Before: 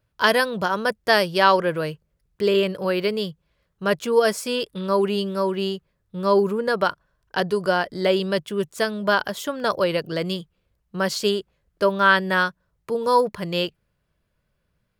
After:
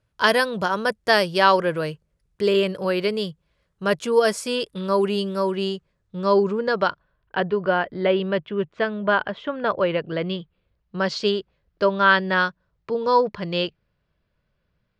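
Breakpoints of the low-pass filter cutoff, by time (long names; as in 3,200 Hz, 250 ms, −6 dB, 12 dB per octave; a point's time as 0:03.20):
low-pass filter 24 dB per octave
0:05.40 11,000 Hz
0:06.79 5,500 Hz
0:07.40 3,000 Hz
0:10.06 3,000 Hz
0:10.96 5,200 Hz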